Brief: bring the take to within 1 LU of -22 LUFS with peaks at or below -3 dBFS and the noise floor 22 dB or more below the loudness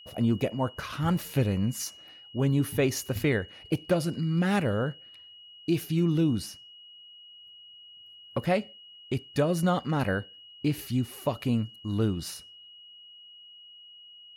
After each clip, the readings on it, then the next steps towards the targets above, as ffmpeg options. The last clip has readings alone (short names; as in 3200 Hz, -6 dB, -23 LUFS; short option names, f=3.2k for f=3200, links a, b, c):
steady tone 2900 Hz; tone level -48 dBFS; loudness -29.0 LUFS; peak -12.0 dBFS; loudness target -22.0 LUFS
-> -af "bandreject=f=2.9k:w=30"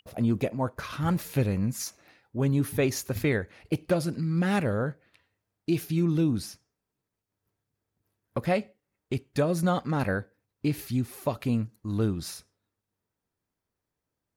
steady tone none; loudness -29.0 LUFS; peak -12.5 dBFS; loudness target -22.0 LUFS
-> -af "volume=7dB"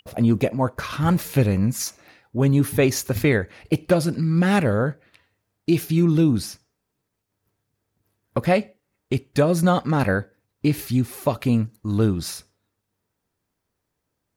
loudness -22.0 LUFS; peak -5.5 dBFS; noise floor -79 dBFS